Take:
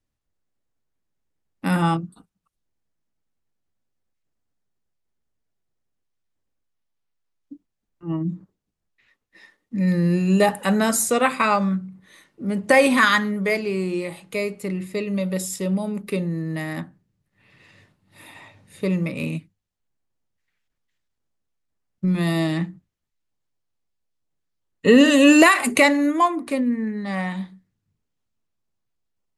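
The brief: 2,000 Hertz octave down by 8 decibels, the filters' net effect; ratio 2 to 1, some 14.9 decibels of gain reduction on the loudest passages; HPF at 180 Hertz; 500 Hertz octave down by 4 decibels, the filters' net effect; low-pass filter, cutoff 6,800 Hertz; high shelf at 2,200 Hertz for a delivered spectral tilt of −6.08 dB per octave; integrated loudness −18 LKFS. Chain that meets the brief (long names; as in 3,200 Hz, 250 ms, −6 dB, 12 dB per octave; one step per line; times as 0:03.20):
high-pass filter 180 Hz
low-pass filter 6,800 Hz
parametric band 500 Hz −4 dB
parametric band 2,000 Hz −5 dB
high-shelf EQ 2,200 Hz −8.5 dB
downward compressor 2 to 1, threshold −40 dBFS
level +18 dB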